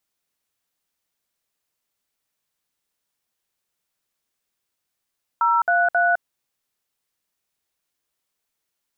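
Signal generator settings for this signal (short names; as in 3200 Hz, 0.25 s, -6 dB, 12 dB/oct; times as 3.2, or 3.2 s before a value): DTMF "033", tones 0.209 s, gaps 59 ms, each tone -18 dBFS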